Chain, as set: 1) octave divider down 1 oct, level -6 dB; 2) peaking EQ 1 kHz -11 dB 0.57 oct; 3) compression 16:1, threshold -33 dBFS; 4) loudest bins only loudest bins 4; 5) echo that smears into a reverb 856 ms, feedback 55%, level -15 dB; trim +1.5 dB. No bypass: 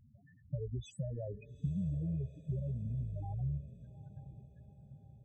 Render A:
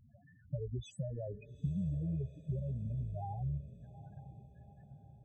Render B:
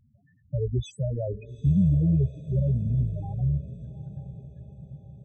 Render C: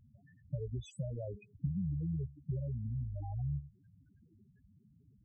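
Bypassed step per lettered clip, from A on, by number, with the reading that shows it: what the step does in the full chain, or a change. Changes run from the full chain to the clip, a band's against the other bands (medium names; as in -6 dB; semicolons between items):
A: 2, 1 kHz band +8.0 dB; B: 3, mean gain reduction 10.5 dB; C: 5, echo-to-direct -13.5 dB to none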